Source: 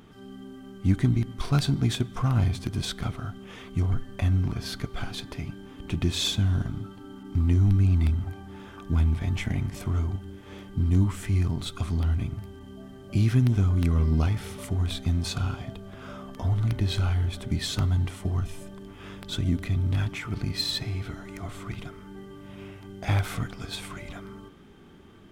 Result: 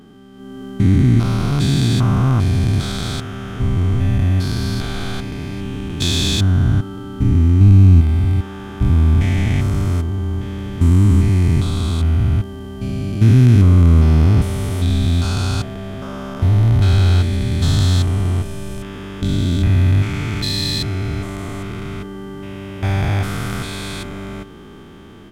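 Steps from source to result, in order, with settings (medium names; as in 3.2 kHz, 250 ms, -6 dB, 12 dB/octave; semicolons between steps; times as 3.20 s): spectrogram pixelated in time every 400 ms; level rider gain up to 10.5 dB; trim +3 dB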